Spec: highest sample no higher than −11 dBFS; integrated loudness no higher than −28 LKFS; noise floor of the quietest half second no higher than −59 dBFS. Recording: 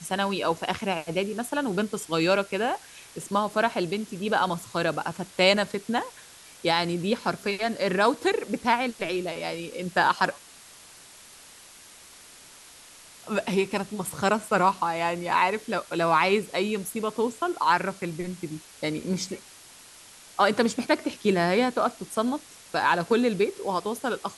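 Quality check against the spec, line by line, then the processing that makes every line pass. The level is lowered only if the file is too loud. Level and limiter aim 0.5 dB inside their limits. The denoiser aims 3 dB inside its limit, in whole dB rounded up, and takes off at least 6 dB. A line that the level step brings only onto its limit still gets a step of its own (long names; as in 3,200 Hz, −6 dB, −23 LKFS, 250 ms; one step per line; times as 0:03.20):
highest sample −7.0 dBFS: out of spec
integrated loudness −26.0 LKFS: out of spec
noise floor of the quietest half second −49 dBFS: out of spec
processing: broadband denoise 11 dB, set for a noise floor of −49 dBFS
level −2.5 dB
brickwall limiter −11.5 dBFS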